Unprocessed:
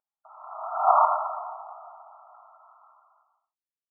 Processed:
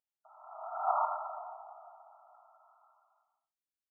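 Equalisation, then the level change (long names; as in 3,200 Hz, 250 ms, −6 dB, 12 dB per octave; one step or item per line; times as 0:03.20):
parametric band 1,100 Hz −9 dB 0.36 octaves
dynamic equaliser 650 Hz, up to −5 dB, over −34 dBFS, Q 2.2
−6.0 dB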